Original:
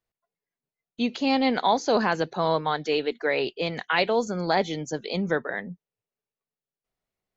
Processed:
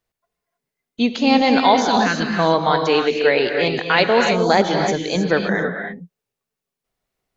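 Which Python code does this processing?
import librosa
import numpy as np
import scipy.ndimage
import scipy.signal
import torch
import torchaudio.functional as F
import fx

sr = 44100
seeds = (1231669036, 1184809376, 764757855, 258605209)

y = fx.band_shelf(x, sr, hz=640.0, db=-12.5, octaves=1.7, at=(1.81, 2.39))
y = fx.rev_gated(y, sr, seeds[0], gate_ms=340, shape='rising', drr_db=3.0)
y = y * 10.0 ** (7.0 / 20.0)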